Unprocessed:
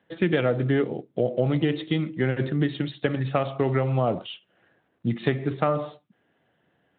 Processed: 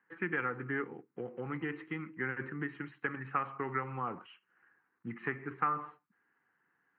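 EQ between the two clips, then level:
resonant band-pass 1,200 Hz, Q 0.93
high-frequency loss of the air 60 metres
phaser with its sweep stopped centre 1,500 Hz, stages 4
0.0 dB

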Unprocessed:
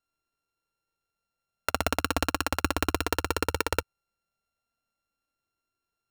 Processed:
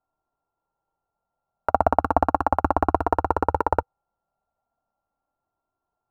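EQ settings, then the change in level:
drawn EQ curve 490 Hz 0 dB, 800 Hz +13 dB, 2,900 Hz −26 dB
+4.5 dB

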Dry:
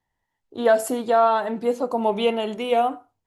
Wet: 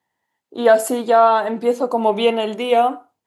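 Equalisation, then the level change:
high-pass filter 190 Hz 12 dB per octave
notch filter 5,600 Hz, Q 26
+5.0 dB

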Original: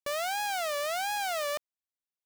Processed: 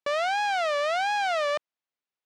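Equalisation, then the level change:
high-pass filter 310 Hz 6 dB per octave
high-frequency loss of the air 87 metres
high-shelf EQ 6,700 Hz −11 dB
+7.5 dB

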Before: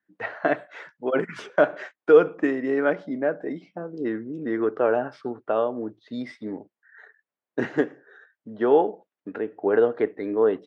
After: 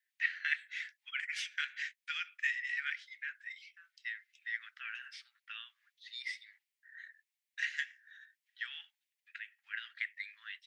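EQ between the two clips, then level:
Butterworth high-pass 1,900 Hz 48 dB per octave
+4.5 dB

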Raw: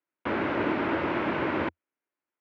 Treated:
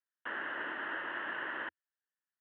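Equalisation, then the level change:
pair of resonant band-passes 2,300 Hz, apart 0.74 octaves
high-frequency loss of the air 350 metres
high-shelf EQ 2,300 Hz −9 dB
+8.0 dB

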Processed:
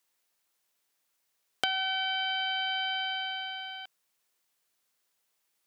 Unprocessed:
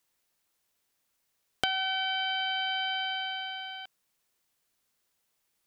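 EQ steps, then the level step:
low-shelf EQ 220 Hz −10.5 dB
0.0 dB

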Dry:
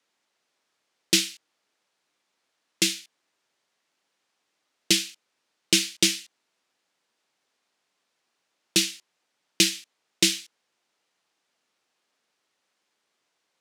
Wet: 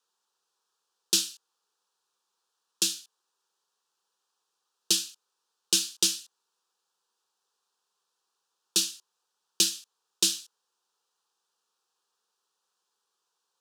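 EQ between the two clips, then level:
parametric band 140 Hz −7 dB 2 octaves
low-shelf EQ 300 Hz −8 dB
phaser with its sweep stopped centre 420 Hz, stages 8
0.0 dB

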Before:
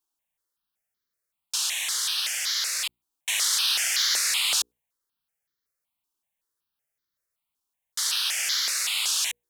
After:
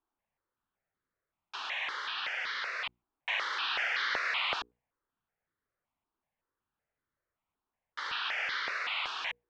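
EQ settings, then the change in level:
low-pass filter 1,800 Hz 12 dB per octave
high-frequency loss of the air 200 metres
+6.0 dB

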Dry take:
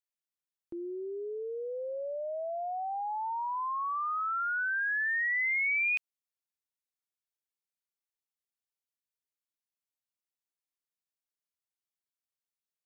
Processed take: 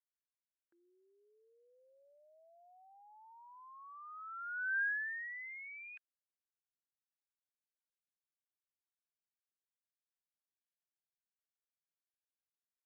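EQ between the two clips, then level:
resonant band-pass 1,600 Hz, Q 11
−2.5 dB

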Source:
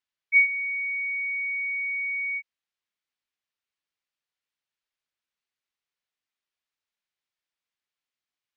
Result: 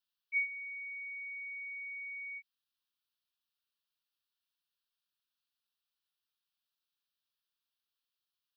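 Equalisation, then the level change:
high-shelf EQ 2,100 Hz +11.5 dB
phaser with its sweep stopped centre 2,100 Hz, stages 6
−6.0 dB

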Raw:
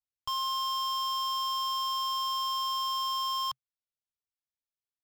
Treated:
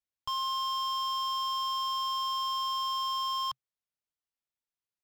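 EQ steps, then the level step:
high-shelf EQ 7,400 Hz −7 dB
0.0 dB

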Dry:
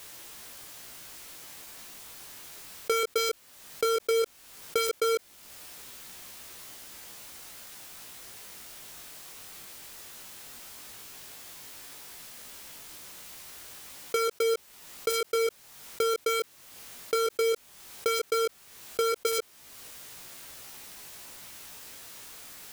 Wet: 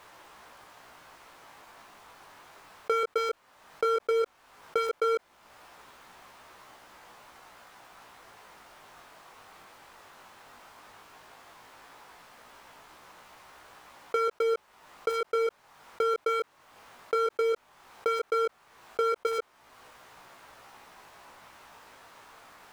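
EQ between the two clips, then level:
low-pass filter 2,300 Hz 6 dB per octave
parametric band 980 Hz +12 dB 1.9 octaves
−5.5 dB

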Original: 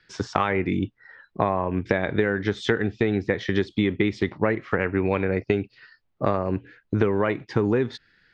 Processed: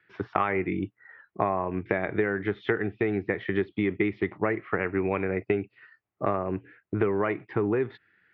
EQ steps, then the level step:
loudspeaker in its box 130–2,400 Hz, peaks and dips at 150 Hz −8 dB, 240 Hz −10 dB, 520 Hz −7 dB, 930 Hz −4 dB, 1,600 Hz −4 dB
0.0 dB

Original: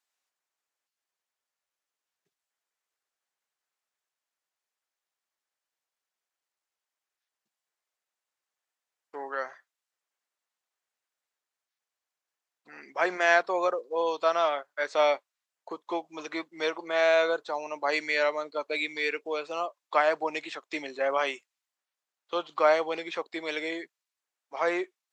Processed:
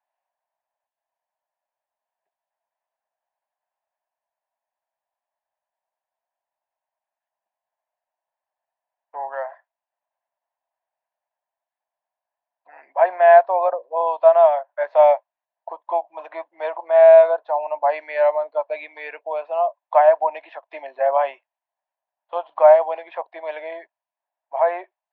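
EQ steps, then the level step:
loudspeaker in its box 380–3,200 Hz, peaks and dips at 670 Hz +8 dB, 1,000 Hz +5 dB, 1,700 Hz +9 dB, 2,600 Hz +3 dB
flat-topped bell 730 Hz +15.5 dB 1.1 octaves
−8.5 dB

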